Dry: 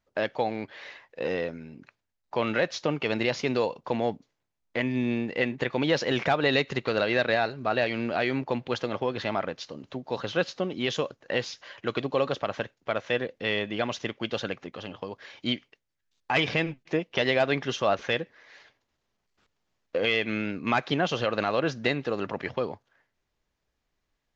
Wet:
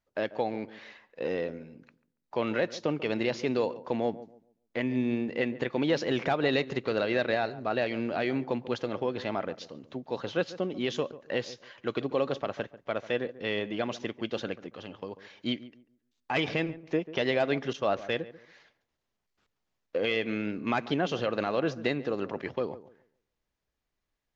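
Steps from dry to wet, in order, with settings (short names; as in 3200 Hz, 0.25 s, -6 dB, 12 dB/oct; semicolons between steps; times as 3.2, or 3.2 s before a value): 17.73–18.22 expander -30 dBFS; dynamic EQ 320 Hz, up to +5 dB, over -39 dBFS, Q 0.71; darkening echo 0.141 s, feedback 27%, low-pass 1100 Hz, level -15 dB; gain -5.5 dB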